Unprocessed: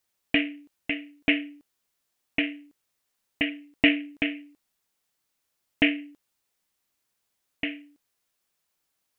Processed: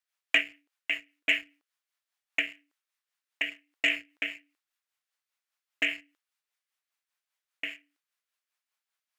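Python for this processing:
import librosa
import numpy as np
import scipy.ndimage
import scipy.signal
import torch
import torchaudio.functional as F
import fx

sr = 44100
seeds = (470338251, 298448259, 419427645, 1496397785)

y = scipy.signal.sosfilt(scipy.signal.butter(2, 1200.0, 'highpass', fs=sr, output='sos'), x)
y = fx.high_shelf(y, sr, hz=3100.0, db=-11.5)
y = fx.leveller(y, sr, passes=1)
y = fx.rotary(y, sr, hz=5.0)
y = F.gain(torch.from_numpy(y), 4.0).numpy()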